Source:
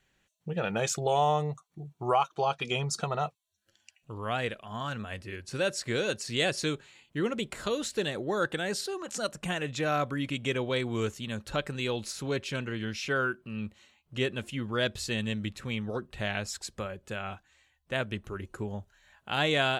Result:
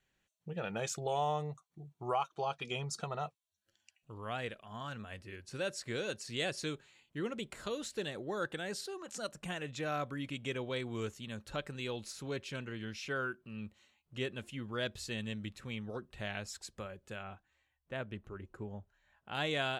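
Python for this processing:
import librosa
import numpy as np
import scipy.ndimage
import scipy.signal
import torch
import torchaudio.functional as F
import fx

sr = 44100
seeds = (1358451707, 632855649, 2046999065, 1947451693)

y = fx.high_shelf(x, sr, hz=3200.0, db=-11.5, at=(17.23, 19.35))
y = F.gain(torch.from_numpy(y), -8.0).numpy()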